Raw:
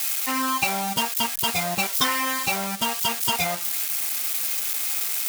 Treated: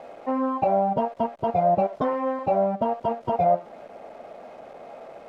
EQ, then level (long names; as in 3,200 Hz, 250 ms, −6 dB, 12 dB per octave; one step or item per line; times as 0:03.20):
low-pass with resonance 610 Hz, resonance Q 4.9
+2.0 dB